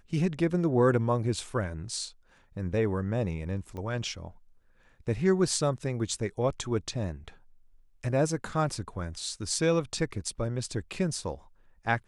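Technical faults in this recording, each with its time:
3.77 s: pop -28 dBFS

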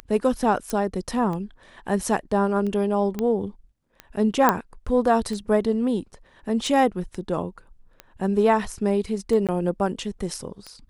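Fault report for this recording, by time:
tick 45 rpm -21 dBFS
0.70 s: pop -13 dBFS
3.19 s: pop -14 dBFS
4.49 s: pop -4 dBFS
7.15 s: dropout 2 ms
9.47–9.49 s: dropout 17 ms

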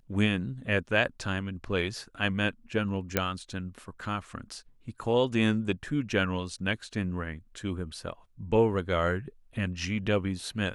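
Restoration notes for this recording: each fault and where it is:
3.17 s: pop -9 dBFS

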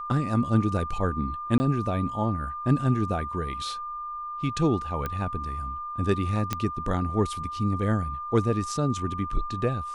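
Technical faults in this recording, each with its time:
whine 1.2 kHz -32 dBFS
1.58–1.60 s: dropout 20 ms
5.06 s: pop -16 dBFS
6.53 s: pop -11 dBFS

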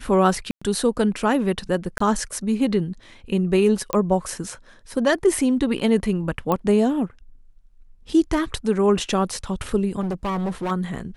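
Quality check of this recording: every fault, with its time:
0.51–0.61 s: dropout 105 ms
1.98–2.00 s: dropout 24 ms
3.93 s: pop -9 dBFS
6.52 s: pop -10 dBFS
10.00–10.72 s: clipped -22 dBFS

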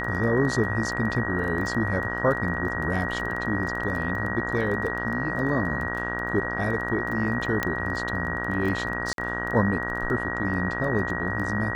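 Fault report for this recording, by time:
buzz 60 Hz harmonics 31 -32 dBFS
crackle 15 per s -31 dBFS
whine 1.9 kHz -30 dBFS
7.63 s: pop -10 dBFS
9.13–9.18 s: dropout 52 ms

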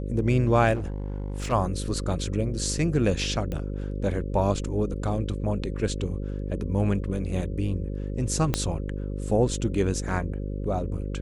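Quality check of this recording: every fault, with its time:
buzz 50 Hz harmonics 11 -31 dBFS
0.74–1.53 s: clipped -26.5 dBFS
3.52 s: pop -19 dBFS
8.54 s: pop -9 dBFS

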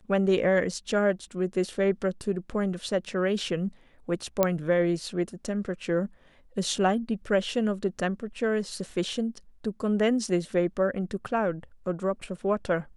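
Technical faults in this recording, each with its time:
4.43 s: pop -8 dBFS

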